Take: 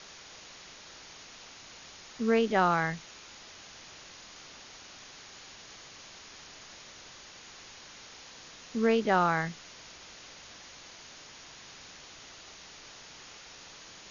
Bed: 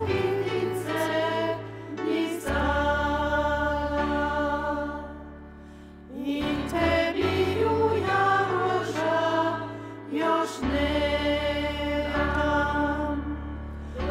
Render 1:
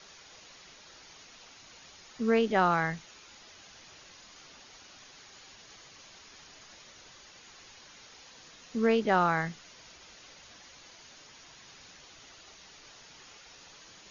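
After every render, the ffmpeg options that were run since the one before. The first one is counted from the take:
-af "afftdn=nr=6:nf=-50"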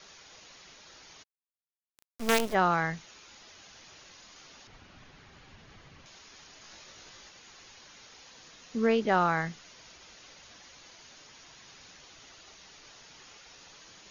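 -filter_complex "[0:a]asplit=3[s0][s1][s2];[s0]afade=t=out:st=1.22:d=0.02[s3];[s1]acrusher=bits=4:dc=4:mix=0:aa=0.000001,afade=t=in:st=1.22:d=0.02,afade=t=out:st=2.53:d=0.02[s4];[s2]afade=t=in:st=2.53:d=0.02[s5];[s3][s4][s5]amix=inputs=3:normalize=0,asettb=1/sr,asplit=3[s6][s7][s8];[s6]atrim=end=4.674[s9];[s7]atrim=start=4.67:end=6.06,asetpts=PTS-STARTPTS,afade=t=in:d=0.004:c=qsin,afade=t=out:st=1.386:d=0.004:c=qsin,bass=f=250:g=12,treble=f=4000:g=-14[s10];[s8]atrim=start=6.056[s11];[s9][s10]acrossfade=d=0.004:c1=hsin:c2=qsin[s12];[s12][s11]acrossfade=d=0.004:c1=qsin:c2=hsin,asettb=1/sr,asplit=3[s13][s14][s15];[s13]atrim=end=6.624[s16];[s14]atrim=start=6.62:end=7.29,asetpts=PTS-STARTPTS,afade=t=in:d=0.004:c=qsin,afade=t=out:st=0.666:d=0.004:c=qsin,asplit=2[s17][s18];[s18]adelay=19,volume=0.75[s19];[s17][s19]amix=inputs=2:normalize=0,atrim=end_sample=29547[s20];[s15]atrim=start=7.286[s21];[s16][s20]acrossfade=d=0.004:c1=hsin:c2=qsin[s22];[s22][s21]acrossfade=d=0.004:c1=qsin:c2=hsin"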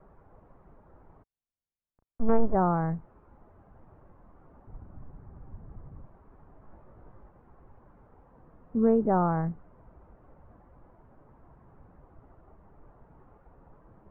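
-af "lowpass=f=1100:w=0.5412,lowpass=f=1100:w=1.3066,aemphasis=mode=reproduction:type=bsi"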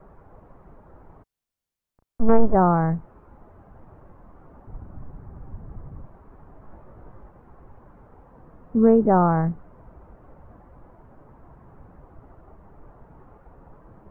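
-af "volume=2.24"

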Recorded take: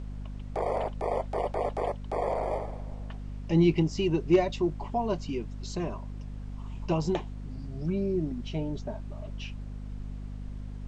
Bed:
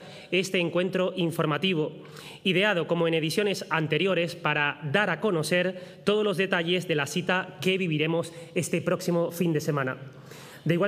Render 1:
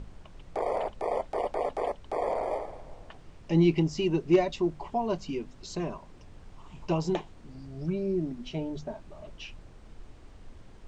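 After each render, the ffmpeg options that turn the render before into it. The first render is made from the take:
-af "bandreject=f=50:t=h:w=6,bandreject=f=100:t=h:w=6,bandreject=f=150:t=h:w=6,bandreject=f=200:t=h:w=6,bandreject=f=250:t=h:w=6"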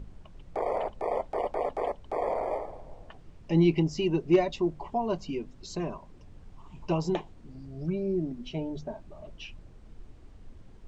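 -af "afftdn=nr=6:nf=-51"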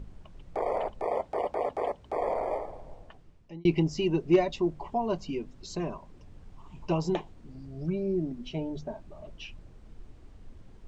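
-filter_complex "[0:a]asettb=1/sr,asplit=3[s0][s1][s2];[s0]atrim=end=1.074[s3];[s1]atrim=start=1.07:end=2.14,asetpts=PTS-STARTPTS,afade=t=in:d=0.004:c=qsin,afade=t=out:st=1.066:d=0.004:c=qsin,highpass=55[s4];[s2]atrim=start=2.136[s5];[s3][s4]acrossfade=d=0.004:c1=hsin:c2=qsin[s6];[s6][s5]acrossfade=d=0.004:c1=qsin:c2=hsin,asplit=2[s7][s8];[s7]atrim=end=3.65,asetpts=PTS-STARTPTS,afade=t=out:st=2.9:d=0.75[s9];[s8]atrim=start=3.65,asetpts=PTS-STARTPTS,afade=t=in:d=0.004:c=hsin[s10];[s9][s10]concat=n=2:v=0:a=1"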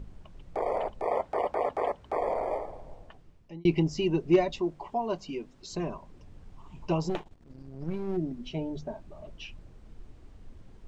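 -filter_complex "[0:a]asettb=1/sr,asplit=3[s0][s1][s2];[s0]atrim=end=1.064[s3];[s1]atrim=start=1.06:end=2.19,asetpts=PTS-STARTPTS,afade=t=in:d=0.004:c=qsin,afade=t=out:st=1.126:d=0.004:c=qsin,equalizer=f=1400:w=1:g=5[s4];[s2]atrim=start=2.186[s5];[s3][s4]acrossfade=d=0.004:c1=hsin:c2=qsin[s6];[s6][s5]acrossfade=d=0.004:c1=qsin:c2=hsin,asettb=1/sr,asplit=3[s7][s8][s9];[s7]atrim=end=4.604[s10];[s8]atrim=start=4.6:end=5.73,asetpts=PTS-STARTPTS,afade=t=in:d=0.004:c=qsin,afade=t=out:st=1.126:d=0.004:c=qsin,lowshelf=f=180:g=-10[s11];[s9]atrim=start=5.726[s12];[s10][s11]acrossfade=d=0.004:c1=hsin:c2=qsin[s13];[s13][s12]acrossfade=d=0.004:c1=qsin:c2=hsin,asplit=3[s14][s15][s16];[s14]afade=t=out:st=7.08:d=0.02[s17];[s15]aeval=exprs='if(lt(val(0),0),0.251*val(0),val(0))':c=same,afade=t=in:st=7.08:d=0.02,afade=t=out:st=8.16:d=0.02[s18];[s16]afade=t=in:st=8.16:d=0.02[s19];[s17][s18][s19]amix=inputs=3:normalize=0"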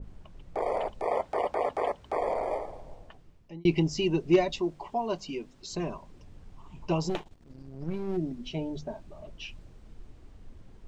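-af "adynamicequalizer=threshold=0.00447:dfrequency=2400:dqfactor=0.7:tfrequency=2400:tqfactor=0.7:attack=5:release=100:ratio=0.375:range=2.5:mode=boostabove:tftype=highshelf"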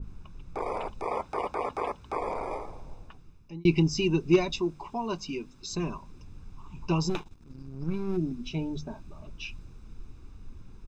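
-af "equalizer=f=5600:t=o:w=0.21:g=6,aecho=1:1:0.8:0.6"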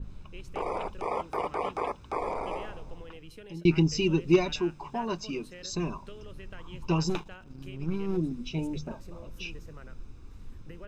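-filter_complex "[1:a]volume=0.0668[s0];[0:a][s0]amix=inputs=2:normalize=0"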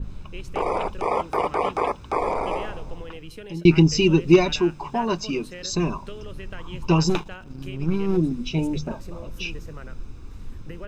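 -af "volume=2.51,alimiter=limit=0.708:level=0:latency=1"

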